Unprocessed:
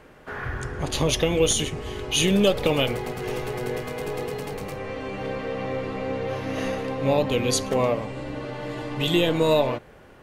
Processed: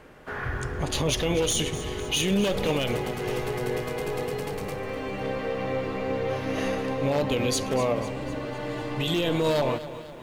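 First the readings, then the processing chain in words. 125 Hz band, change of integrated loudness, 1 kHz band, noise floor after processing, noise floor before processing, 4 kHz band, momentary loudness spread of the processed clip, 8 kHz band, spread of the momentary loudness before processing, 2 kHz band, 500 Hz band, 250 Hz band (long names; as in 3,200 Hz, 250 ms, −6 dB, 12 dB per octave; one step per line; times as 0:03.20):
−1.5 dB, −2.5 dB, −1.5 dB, −38 dBFS, −49 dBFS, −3.0 dB, 9 LU, −3.0 dB, 12 LU, −1.5 dB, −2.5 dB, −2.0 dB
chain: wavefolder on the positive side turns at −15 dBFS
brickwall limiter −15.5 dBFS, peak gain reduction 7 dB
feedback echo at a low word length 250 ms, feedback 55%, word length 9 bits, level −14 dB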